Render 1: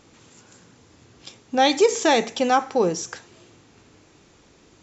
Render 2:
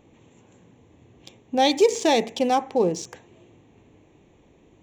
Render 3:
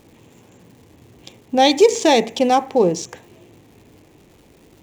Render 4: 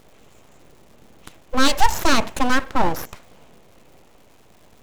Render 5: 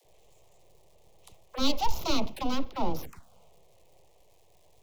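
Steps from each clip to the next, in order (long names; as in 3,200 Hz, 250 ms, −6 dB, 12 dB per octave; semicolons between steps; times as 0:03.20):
adaptive Wiener filter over 9 samples; parametric band 1,400 Hz −15 dB 0.55 octaves
surface crackle 390 per second −49 dBFS; level +5.5 dB
full-wave rectification
phaser swept by the level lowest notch 230 Hz, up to 1,700 Hz, full sweep at −16.5 dBFS; all-pass dispersion lows, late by 55 ms, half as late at 320 Hz; level −8 dB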